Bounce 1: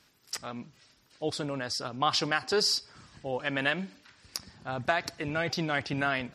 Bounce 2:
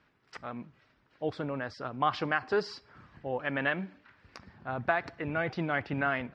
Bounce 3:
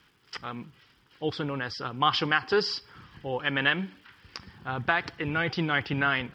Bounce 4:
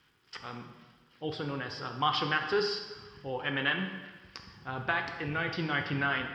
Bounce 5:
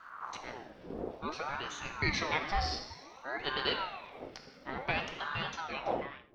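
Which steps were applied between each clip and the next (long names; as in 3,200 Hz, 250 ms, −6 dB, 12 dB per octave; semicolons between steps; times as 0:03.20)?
Chebyshev low-pass filter 1,800 Hz, order 2
thirty-one-band graphic EQ 250 Hz −4 dB, 630 Hz −12 dB, 3,150 Hz +11 dB, 5,000 Hz +9 dB; surface crackle 410 per second −64 dBFS; level +5 dB
dense smooth reverb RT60 1.3 s, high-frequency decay 0.85×, DRR 4 dB; level −5.5 dB
fade-out on the ending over 1.18 s; wind on the microphone 220 Hz −43 dBFS; ring modulator whose carrier an LFO sweeps 830 Hz, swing 60%, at 0.56 Hz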